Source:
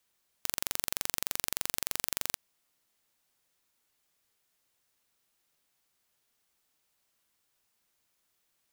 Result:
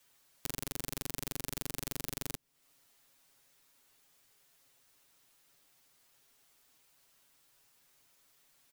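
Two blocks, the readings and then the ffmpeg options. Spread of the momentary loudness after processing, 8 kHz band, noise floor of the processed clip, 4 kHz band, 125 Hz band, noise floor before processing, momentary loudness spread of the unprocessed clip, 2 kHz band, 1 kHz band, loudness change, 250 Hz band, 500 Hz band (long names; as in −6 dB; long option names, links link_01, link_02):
4 LU, −7.0 dB, −81 dBFS, −7.0 dB, +8.5 dB, −77 dBFS, 4 LU, −7.0 dB, −6.0 dB, −6.5 dB, +6.0 dB, 0.0 dB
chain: -filter_complex "[0:a]aecho=1:1:7.3:0.76,acrossover=split=380[link_01][link_02];[link_02]acompressor=threshold=-45dB:ratio=3[link_03];[link_01][link_03]amix=inputs=2:normalize=0,volume=6dB"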